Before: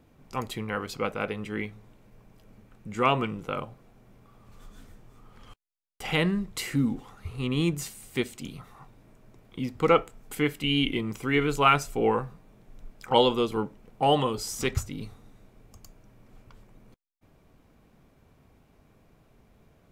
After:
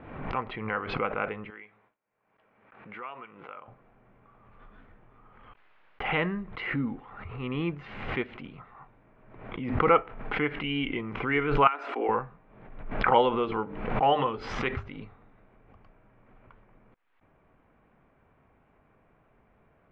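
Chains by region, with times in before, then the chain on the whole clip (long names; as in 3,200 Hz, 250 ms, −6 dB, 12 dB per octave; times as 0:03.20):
0:01.50–0:03.68: high-pass filter 720 Hz 6 dB per octave + downward compressor 2 to 1, threshold −49 dBFS + noise gate with hold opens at −53 dBFS, closes at −57 dBFS
0:11.67–0:12.09: downward compressor, threshold −27 dBFS + Chebyshev high-pass with heavy ripple 240 Hz, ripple 3 dB + parametric band 8,700 Hz +11.5 dB 1 octave
0:13.43–0:15.04: high-shelf EQ 4,600 Hz +10 dB + mains-hum notches 50/100/150/200/250/300/350/400/450 Hz
whole clip: Bessel low-pass filter 1,500 Hz, order 6; tilt shelving filter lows −7 dB, about 660 Hz; background raised ahead of every attack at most 58 dB per second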